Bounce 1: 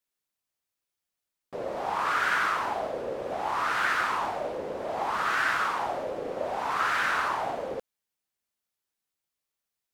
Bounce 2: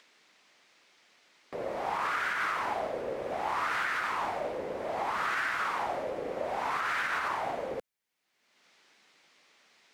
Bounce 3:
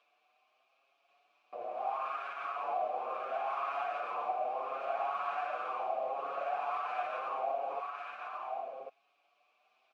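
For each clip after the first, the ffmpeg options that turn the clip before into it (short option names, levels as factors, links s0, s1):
-filter_complex "[0:a]equalizer=f=2100:t=o:w=0.48:g=5,acrossover=split=170|5900[s0][s1][s2];[s1]acompressor=mode=upward:threshold=0.0126:ratio=2.5[s3];[s0][s3][s2]amix=inputs=3:normalize=0,alimiter=limit=0.1:level=0:latency=1:release=111,volume=0.794"
-filter_complex "[0:a]asplit=3[s0][s1][s2];[s0]bandpass=f=730:t=q:w=8,volume=1[s3];[s1]bandpass=f=1090:t=q:w=8,volume=0.501[s4];[s2]bandpass=f=2440:t=q:w=8,volume=0.355[s5];[s3][s4][s5]amix=inputs=3:normalize=0,asplit=2[s6][s7];[s7]aecho=0:1:1088:0.668[s8];[s6][s8]amix=inputs=2:normalize=0,asplit=2[s9][s10];[s10]adelay=6.5,afreqshift=0.75[s11];[s9][s11]amix=inputs=2:normalize=1,volume=2.24"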